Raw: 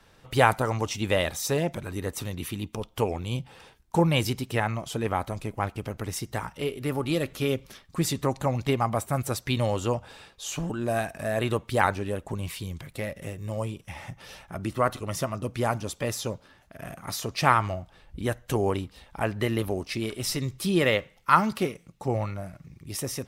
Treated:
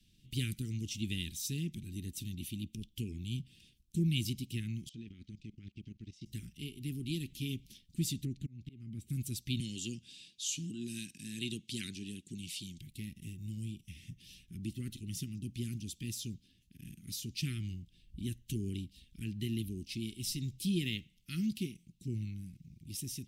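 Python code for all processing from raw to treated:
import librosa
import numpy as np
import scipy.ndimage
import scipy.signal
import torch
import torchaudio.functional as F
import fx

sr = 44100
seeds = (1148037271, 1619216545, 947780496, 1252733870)

y = fx.chain(x, sr, fx.lowpass(hz=5800.0, slope=24),
    fx.low_shelf(hz=110.0, db=-7.0),
    fx.level_steps(step_db=18), at=(4.89, 6.26))
y = fx.chain(y, sr, fx.lowpass(hz=1900.0, slope=6),
    fx.auto_swell(attack_ms=416.0), at=(8.25, 9.1))
y = fx.chain(y, sr, fx.bandpass_edges(low_hz=170.0, high_hz=7200.0),
    fx.high_shelf(hz=3300.0, db=11.5), at=(9.6, 12.79))
y = scipy.signal.sosfilt(scipy.signal.cheby1(3, 1.0, [220.0, 2900.0], 'bandstop', fs=sr, output='sos'), y)
y = fx.peak_eq(y, sr, hz=360.0, db=13.0, octaves=0.68)
y = y * librosa.db_to_amplitude(-7.0)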